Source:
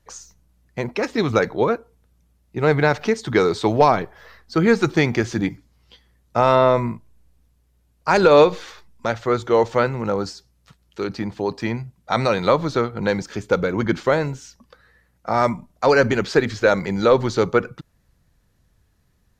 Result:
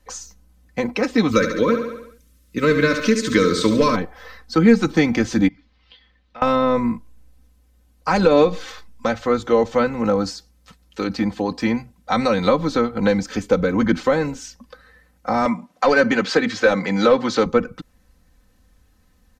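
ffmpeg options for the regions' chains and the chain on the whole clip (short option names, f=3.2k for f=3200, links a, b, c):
-filter_complex "[0:a]asettb=1/sr,asplit=3[a][b][c];[a]atrim=end=1.314[d];[b]atrim=start=1.31:end=3.96,asetpts=PTS-STARTPTS,afade=t=in:d=0.004:c=qsin,afade=t=out:st=2.646:d=0.004:c=qsin,asuperstop=centerf=780:order=4:qfactor=2.1,highshelf=f=2.9k:g=8.5,aecho=1:1:70|140|210|280|350|420:0.376|0.192|0.0978|0.0499|0.0254|0.013,atrim=end_sample=116865[e];[c]atrim=start=3.956[f];[d][e]acrossfade=d=0.004:c1=hsin:c2=qsin[g];[g][f]acrossfade=d=0.004:c1=qsin:c2=hsin,asettb=1/sr,asplit=3[h][i][j];[h]atrim=end=5.484[k];[i]atrim=start=5.48:end=6.42,asetpts=PTS-STARTPTS,afade=t=in:d=0.004:c=qsin,afade=t=out:st=0.936:d=0.004:c=qsin,tiltshelf=f=1.5k:g=-6.5,acompressor=threshold=-50dB:ratio=2.5:attack=3.2:release=140:knee=1:detection=peak,lowpass=f=3.8k:w=0.5412,lowpass=f=3.8k:w=1.3066[l];[j]atrim=start=6.416[m];[k][l]acrossfade=d=0.004:c1=hsin:c2=qsin[n];[n][m]acrossfade=d=0.004:c1=qsin:c2=hsin,asettb=1/sr,asplit=3[o][p][q];[o]atrim=end=15.454[r];[p]atrim=start=15.45:end=17.46,asetpts=PTS-STARTPTS,afade=t=in:d=0.004:c=qsin,afade=t=out:st=2.006:d=0.004:c=qsin,highpass=f=110:w=0.5412,highpass=f=110:w=1.3066,highshelf=f=6.6k:g=-6,asplit=2[s][t];[t]highpass=f=720:p=1,volume=11dB,asoftclip=type=tanh:threshold=-3dB[u];[s][u]amix=inputs=2:normalize=0,lowpass=f=6.2k:p=1,volume=-6dB[v];[q]atrim=start=17.456[w];[r][v]acrossfade=d=0.004:c1=hsin:c2=qsin[x];[x][w]acrossfade=d=0.004:c1=qsin:c2=hsin,acrossover=split=280[y][z];[z]acompressor=threshold=-27dB:ratio=2[aa];[y][aa]amix=inputs=2:normalize=0,aecho=1:1:3.9:0.76,volume=3.5dB"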